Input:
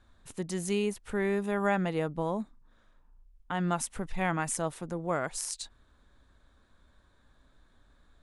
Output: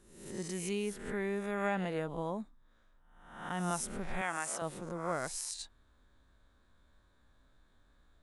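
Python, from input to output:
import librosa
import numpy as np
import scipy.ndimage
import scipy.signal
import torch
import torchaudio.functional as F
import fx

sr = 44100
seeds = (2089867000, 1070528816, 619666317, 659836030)

y = fx.spec_swells(x, sr, rise_s=0.74)
y = fx.weighting(y, sr, curve='A', at=(4.21, 4.62))
y = y * 10.0 ** (-6.5 / 20.0)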